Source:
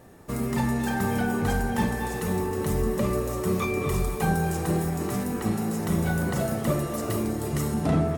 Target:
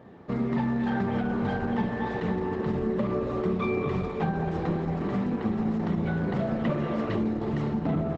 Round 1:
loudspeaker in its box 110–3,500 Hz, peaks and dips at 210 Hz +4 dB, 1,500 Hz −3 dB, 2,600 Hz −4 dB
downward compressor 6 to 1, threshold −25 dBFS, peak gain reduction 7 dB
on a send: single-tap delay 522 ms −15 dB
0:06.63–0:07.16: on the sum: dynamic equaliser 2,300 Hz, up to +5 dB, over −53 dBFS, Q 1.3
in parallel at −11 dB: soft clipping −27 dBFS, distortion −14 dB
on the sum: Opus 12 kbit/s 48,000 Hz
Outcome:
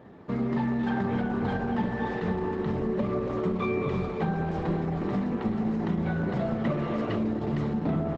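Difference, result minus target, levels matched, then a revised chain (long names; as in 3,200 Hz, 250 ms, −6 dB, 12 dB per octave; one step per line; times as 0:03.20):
soft clipping: distortion +11 dB
loudspeaker in its box 110–3,500 Hz, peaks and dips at 210 Hz +4 dB, 1,500 Hz −3 dB, 2,600 Hz −4 dB
downward compressor 6 to 1, threshold −25 dBFS, peak gain reduction 7 dB
on a send: single-tap delay 522 ms −15 dB
0:06.63–0:07.16: on the sum: dynamic equaliser 2,300 Hz, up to +5 dB, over −53 dBFS, Q 1.3
in parallel at −11 dB: soft clipping −19 dBFS, distortion −25 dB
on the sum: Opus 12 kbit/s 48,000 Hz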